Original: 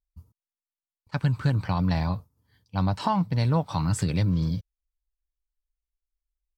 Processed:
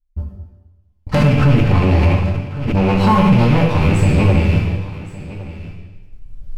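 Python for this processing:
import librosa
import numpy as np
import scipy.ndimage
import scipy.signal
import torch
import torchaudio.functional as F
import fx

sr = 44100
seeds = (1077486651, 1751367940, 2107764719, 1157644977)

y = fx.rattle_buzz(x, sr, strikes_db=-27.0, level_db=-18.0)
y = fx.recorder_agc(y, sr, target_db=-16.0, rise_db_per_s=13.0, max_gain_db=30)
y = fx.riaa(y, sr, side='playback')
y = y + 0.58 * np.pad(y, (int(3.8 * sr / 1000.0), 0))[:len(y)]
y = fx.leveller(y, sr, passes=2)
y = fx.resonator_bank(y, sr, root=43, chord='minor', decay_s=0.22)
y = fx.fold_sine(y, sr, drive_db=8, ceiling_db=-10.0)
y = y + 10.0 ** (-17.0 / 20.0) * np.pad(y, (int(1113 * sr / 1000.0), 0))[:len(y)]
y = fx.rev_plate(y, sr, seeds[0], rt60_s=1.2, hf_ratio=1.0, predelay_ms=0, drr_db=-1.0)
y = fx.pre_swell(y, sr, db_per_s=53.0, at=(1.17, 3.47))
y = y * librosa.db_to_amplitude(-1.0)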